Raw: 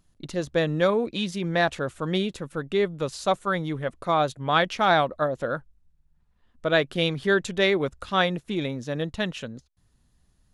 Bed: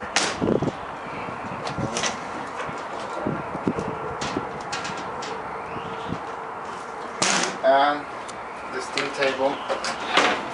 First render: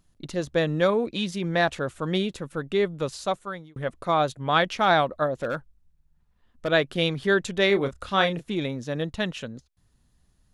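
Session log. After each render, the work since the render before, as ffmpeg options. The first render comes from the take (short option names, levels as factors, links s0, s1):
-filter_complex "[0:a]asplit=3[s0][s1][s2];[s0]afade=t=out:st=5.39:d=0.02[s3];[s1]asoftclip=type=hard:threshold=0.0794,afade=t=in:st=5.39:d=0.02,afade=t=out:st=6.67:d=0.02[s4];[s2]afade=t=in:st=6.67:d=0.02[s5];[s3][s4][s5]amix=inputs=3:normalize=0,asettb=1/sr,asplit=3[s6][s7][s8];[s6]atrim=end=7.674[s9];[s7]atrim=start=7.67:end=8.5,asetpts=PTS-STARTPTS,afade=t=in:d=0.004:c=qsin,afade=t=out:st=0.826:d=0.004:c=qsin,asplit=2[s10][s11];[s11]adelay=30,volume=0.376[s12];[s10][s12]amix=inputs=2:normalize=0,atrim=end_sample=36603[s13];[s8]atrim=start=8.496[s14];[s9][s13]acrossfade=d=0.004:c1=hsin:c2=qsin[s15];[s15][s14]acrossfade=d=0.004:c1=qsin:c2=hsin,asplit=2[s16][s17];[s16]atrim=end=3.76,asetpts=PTS-STARTPTS,afade=t=out:st=3.08:d=0.68[s18];[s17]atrim=start=3.76,asetpts=PTS-STARTPTS,afade=t=in:d=0.004:c=hsin[s19];[s18][s19]concat=n=2:v=0:a=1"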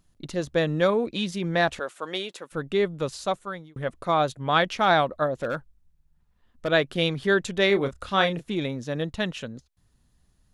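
-filter_complex "[0:a]asettb=1/sr,asplit=3[s0][s1][s2];[s0]atrim=end=1.794[s3];[s1]atrim=start=1.79:end=2.52,asetpts=PTS-STARTPTS,afade=t=in:d=0.004:c=qsin,afade=t=out:st=0.726:d=0.004:c=qsin,highpass=500[s4];[s2]atrim=start=2.516[s5];[s3][s4]acrossfade=d=0.004:c1=hsin:c2=qsin[s6];[s6][s5]acrossfade=d=0.004:c1=qsin:c2=hsin"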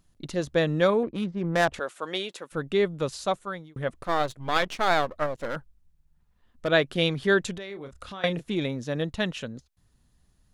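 -filter_complex "[0:a]asettb=1/sr,asplit=3[s0][s1][s2];[s0]atrim=end=1.034[s3];[s1]atrim=start=1.03:end=1.74,asetpts=PTS-STARTPTS,afade=t=in:d=0.004:c=qsin,afade=t=out:st=0.706:d=0.004:c=qsin,adynamicsmooth=sensitivity=1.5:basefreq=680[s4];[s2]atrim=start=1.736[s5];[s3][s4]acrossfade=d=0.004:c1=hsin:c2=qsin[s6];[s6][s5]acrossfade=d=0.004:c1=qsin:c2=hsin,asettb=1/sr,asplit=3[s7][s8][s9];[s7]atrim=end=3.994[s10];[s8]atrim=start=3.99:end=5.56,asetpts=PTS-STARTPTS,afade=t=in:d=0.004:c=qsin,afade=t=out:st=1.566:d=0.004:c=qsin,aeval=exprs='if(lt(val(0),0),0.251*val(0),val(0))':c=same[s11];[s9]atrim=start=5.556[s12];[s10][s11]acrossfade=d=0.004:c1=hsin:c2=qsin[s13];[s13][s12]acrossfade=d=0.004:c1=qsin:c2=hsin,asettb=1/sr,asplit=3[s14][s15][s16];[s14]atrim=end=7.574[s17];[s15]atrim=start=7.57:end=8.24,asetpts=PTS-STARTPTS,afade=t=in:d=0.004:c=qsin,afade=t=out:st=0.666:d=0.004:c=qsin,acompressor=threshold=0.0141:ratio=5:attack=3.2:release=140:knee=1:detection=peak[s18];[s16]atrim=start=8.236[s19];[s17][s18]acrossfade=d=0.004:c1=hsin:c2=qsin[s20];[s20][s19]acrossfade=d=0.004:c1=qsin:c2=hsin"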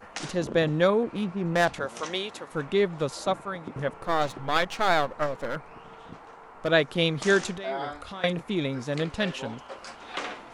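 -filter_complex "[1:a]volume=0.178[s0];[0:a][s0]amix=inputs=2:normalize=0"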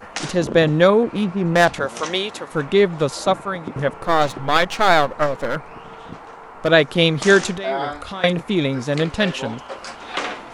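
-af "volume=2.66,alimiter=limit=0.891:level=0:latency=1"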